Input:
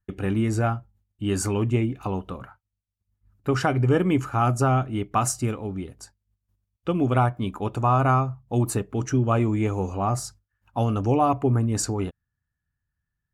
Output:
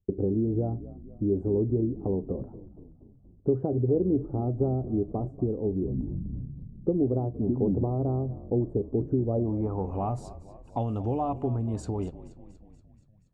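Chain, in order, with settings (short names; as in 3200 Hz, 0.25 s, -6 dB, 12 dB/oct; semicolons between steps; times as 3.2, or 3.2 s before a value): band shelf 2700 Hz -15.5 dB 2.6 oct; compressor 3:1, threshold -33 dBFS, peak gain reduction 13 dB; low-pass sweep 430 Hz -> 3500 Hz, 9.28–10.15; frequency-shifting echo 0.238 s, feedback 63%, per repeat -42 Hz, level -16 dB; 5.7–7.84 echoes that change speed 0.122 s, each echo -6 st, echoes 3; gain +3.5 dB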